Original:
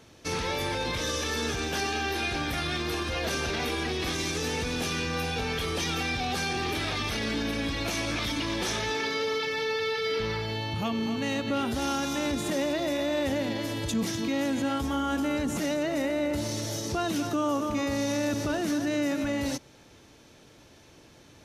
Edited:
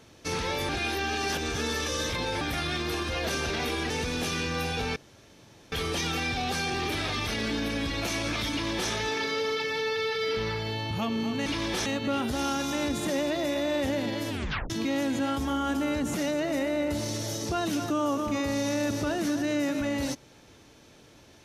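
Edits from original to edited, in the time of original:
0:00.69–0:02.41: reverse
0:03.90–0:04.49: remove
0:05.55: splice in room tone 0.76 s
0:08.34–0:08.74: duplicate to 0:11.29
0:13.73: tape stop 0.40 s

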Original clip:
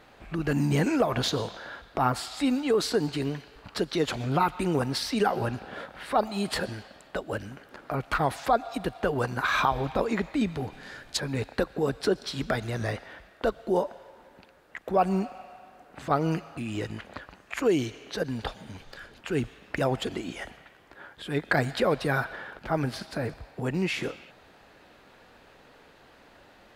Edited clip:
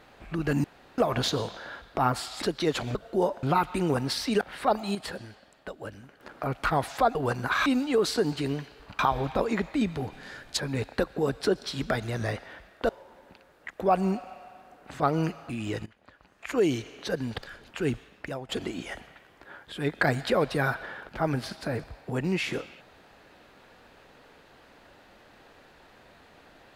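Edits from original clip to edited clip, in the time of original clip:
0:00.64–0:00.98: fill with room tone
0:02.42–0:03.75: move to 0:09.59
0:05.26–0:05.89: remove
0:06.43–0:07.68: clip gain −7 dB
0:08.63–0:09.08: remove
0:13.49–0:13.97: move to 0:04.28
0:16.94–0:17.71: fade in quadratic, from −19 dB
0:18.46–0:18.88: remove
0:19.40–0:19.99: fade out, to −18.5 dB

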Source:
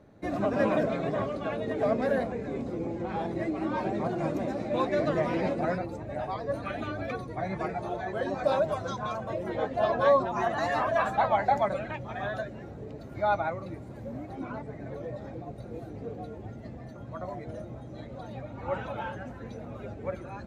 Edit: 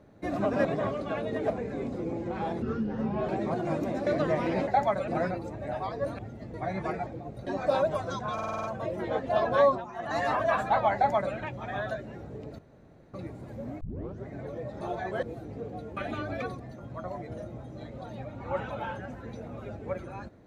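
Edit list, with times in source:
0:00.65–0:01.00: remove
0:01.85–0:02.24: remove
0:03.36–0:03.82: play speed 69%
0:04.60–0:04.94: remove
0:06.66–0:07.29: swap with 0:16.42–0:16.77
0:07.82–0:08.24: swap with 0:15.28–0:15.68
0:09.11: stutter 0.05 s, 7 plays
0:10.15–0:10.65: duck −15.5 dB, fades 0.24 s
0:11.42–0:11.82: duplicate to 0:05.55
0:13.06–0:13.61: fill with room tone
0:14.28: tape start 0.46 s

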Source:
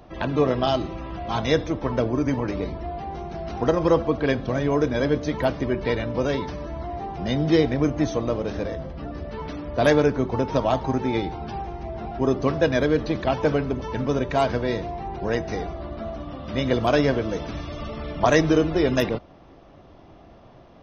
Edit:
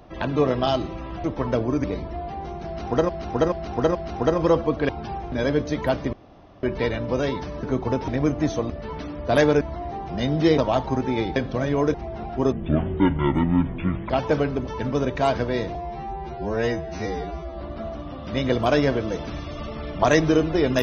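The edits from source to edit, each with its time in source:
0:01.24–0:01.69: remove
0:02.29–0:02.54: remove
0:03.36–0:03.79: repeat, 4 plays
0:04.30–0:04.88: swap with 0:11.33–0:11.76
0:05.69: splice in room tone 0.50 s
0:06.69–0:07.66: swap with 0:10.10–0:10.55
0:08.28–0:09.19: remove
0:12.34–0:13.24: play speed 57%
0:14.89–0:15.82: time-stretch 2×

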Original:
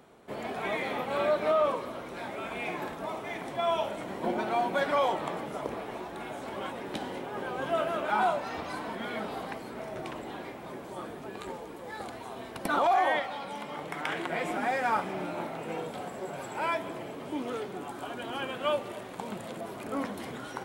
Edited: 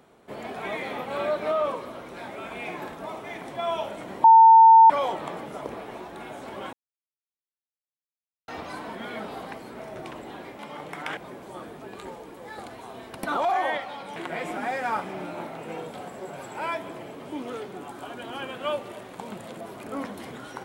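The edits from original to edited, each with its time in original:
0:04.24–0:04.90: beep over 900 Hz −8.5 dBFS
0:06.73–0:08.48: silence
0:13.58–0:14.16: move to 0:10.59

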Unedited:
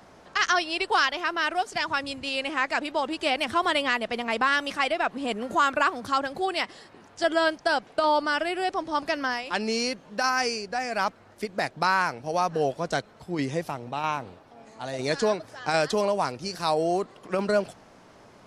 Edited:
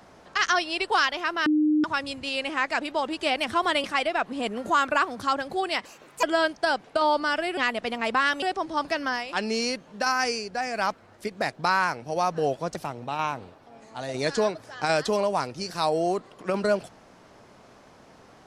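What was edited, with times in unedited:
0:01.46–0:01.84: beep over 304 Hz −18 dBFS
0:03.84–0:04.69: move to 0:08.60
0:06.70–0:07.26: play speed 146%
0:12.93–0:13.60: remove

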